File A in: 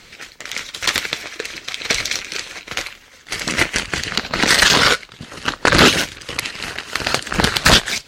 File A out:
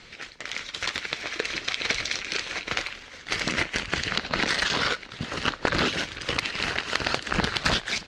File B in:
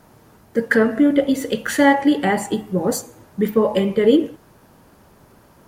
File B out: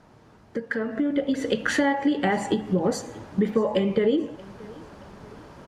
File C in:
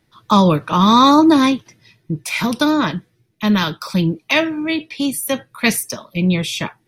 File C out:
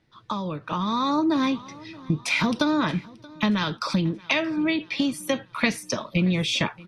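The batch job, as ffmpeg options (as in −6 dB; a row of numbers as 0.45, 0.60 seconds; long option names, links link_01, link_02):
-filter_complex "[0:a]acompressor=threshold=-25dB:ratio=6,asplit=2[link_01][link_02];[link_02]aecho=0:1:628|1256|1884:0.075|0.0345|0.0159[link_03];[link_01][link_03]amix=inputs=2:normalize=0,dynaudnorm=framelen=400:gausssize=5:maxgain=9dB,lowpass=5400,volume=-3.5dB"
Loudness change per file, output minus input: −10.0, −6.5, −8.5 LU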